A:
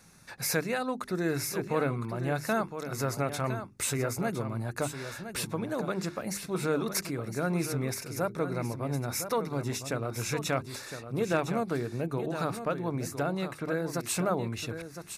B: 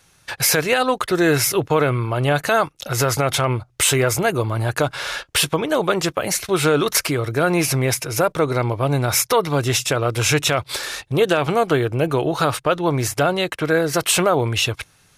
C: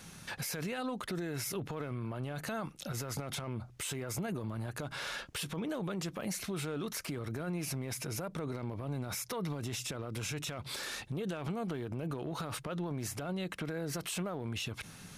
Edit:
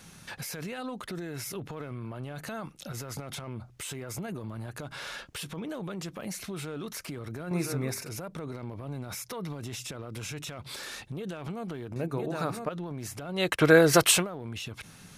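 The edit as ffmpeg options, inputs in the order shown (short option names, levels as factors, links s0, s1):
-filter_complex "[0:a]asplit=2[s0][s1];[2:a]asplit=4[s2][s3][s4][s5];[s2]atrim=end=7.512[s6];[s0]atrim=start=7.508:end=8.092[s7];[s3]atrim=start=8.088:end=11.962[s8];[s1]atrim=start=11.958:end=12.692[s9];[s4]atrim=start=12.688:end=13.56[s10];[1:a]atrim=start=13.32:end=14.27[s11];[s5]atrim=start=14.03[s12];[s6][s7]acrossfade=d=0.004:c1=hsin:c2=hsin[s13];[s13][s8]acrossfade=d=0.004:c1=hsin:c2=hsin[s14];[s14][s9]acrossfade=d=0.004:c1=hsin:c2=hsin[s15];[s15][s10]acrossfade=d=0.004:c1=hsin:c2=hsin[s16];[s16][s11]acrossfade=d=0.24:c1=tri:c2=tri[s17];[s17][s12]acrossfade=d=0.24:c1=tri:c2=tri"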